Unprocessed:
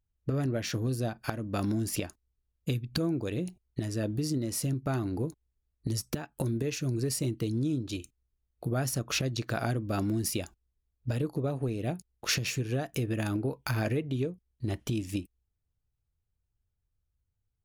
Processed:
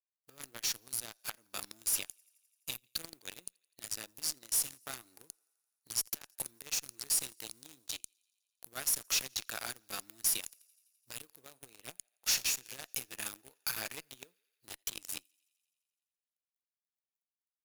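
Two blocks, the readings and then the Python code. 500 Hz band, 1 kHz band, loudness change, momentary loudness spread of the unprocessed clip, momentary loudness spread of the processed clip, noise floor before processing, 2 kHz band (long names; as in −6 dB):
−20.0 dB, −10.0 dB, −3.5 dB, 7 LU, 19 LU, −81 dBFS, −4.5 dB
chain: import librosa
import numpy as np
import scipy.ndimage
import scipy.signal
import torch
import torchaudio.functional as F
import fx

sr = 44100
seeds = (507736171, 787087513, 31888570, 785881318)

p1 = fx.law_mismatch(x, sr, coded='A')
p2 = np.diff(p1, prepend=0.0)
p3 = fx.echo_thinned(p2, sr, ms=85, feedback_pct=77, hz=420.0, wet_db=-21.5)
p4 = fx.fuzz(p3, sr, gain_db=50.0, gate_db=-46.0)
p5 = p3 + (p4 * 10.0 ** (-10.0 / 20.0))
y = p5 * 10.0 ** (-6.0 / 20.0)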